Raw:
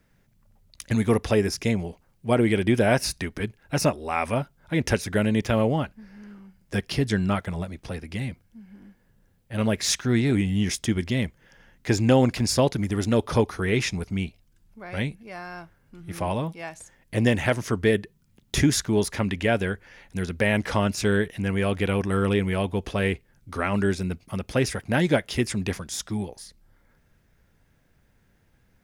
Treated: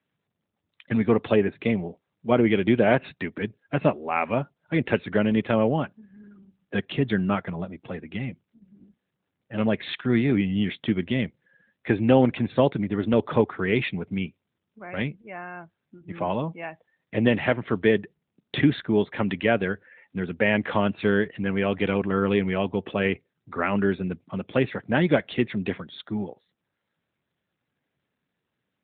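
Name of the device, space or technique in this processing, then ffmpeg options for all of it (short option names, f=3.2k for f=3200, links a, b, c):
mobile call with aggressive noise cancelling: -af "highpass=140,afftdn=nr=17:nf=-47,volume=1.5dB" -ar 8000 -c:a libopencore_amrnb -b:a 12200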